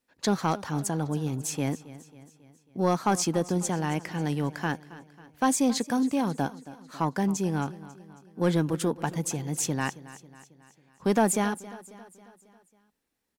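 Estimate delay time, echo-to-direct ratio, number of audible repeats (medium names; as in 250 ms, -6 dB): 272 ms, -16.0 dB, 4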